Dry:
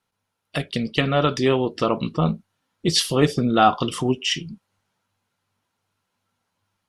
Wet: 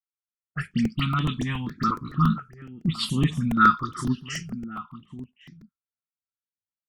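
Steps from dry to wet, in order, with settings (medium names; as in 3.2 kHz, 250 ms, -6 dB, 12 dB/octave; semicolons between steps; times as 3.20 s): treble shelf 5.2 kHz +11.5 dB; 0.67–3.06 s: short-mantissa float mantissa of 6-bit; phase dispersion highs, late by 58 ms, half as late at 2 kHz; expander -38 dBFS; FFT filter 110 Hz 0 dB, 230 Hz +5 dB, 590 Hz -29 dB, 1.3 kHz +8 dB, 2.3 kHz -7 dB, 6.8 kHz -8 dB, 12 kHz -20 dB; echo from a far wall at 190 m, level -15 dB; crackling interface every 0.14 s, samples 128, repeat, from 0.71 s; stepped phaser 4.2 Hz 760–5000 Hz; trim -1 dB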